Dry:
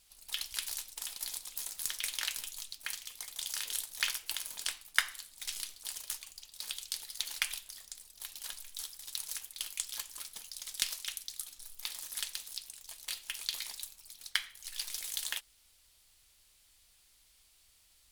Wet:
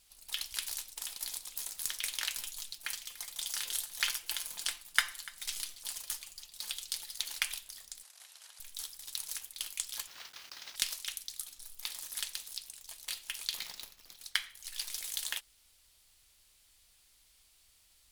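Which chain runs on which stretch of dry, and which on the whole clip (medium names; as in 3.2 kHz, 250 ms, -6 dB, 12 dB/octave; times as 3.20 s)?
2.35–7.15 s: comb 5.8 ms, depth 45% + delay 292 ms -19.5 dB
8.03–8.60 s: CVSD coder 64 kbps + high-pass 630 Hz 24 dB/octave + compression 8:1, threshold -50 dBFS
10.07–10.76 s: CVSD coder 32 kbps + high-pass 1 kHz + companded quantiser 4-bit
13.57–14.17 s: median filter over 5 samples + treble shelf 4.5 kHz +5 dB
whole clip: none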